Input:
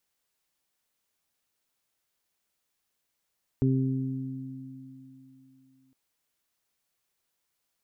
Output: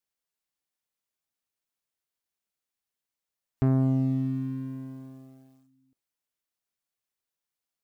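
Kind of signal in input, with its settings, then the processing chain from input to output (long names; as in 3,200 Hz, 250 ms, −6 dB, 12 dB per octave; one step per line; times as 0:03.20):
harmonic partials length 2.31 s, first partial 132 Hz, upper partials −1.5/−8 dB, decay 2.84 s, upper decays 3.51/1.34 s, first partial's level −22 dB
leveller curve on the samples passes 2
noise reduction from a noise print of the clip's start 6 dB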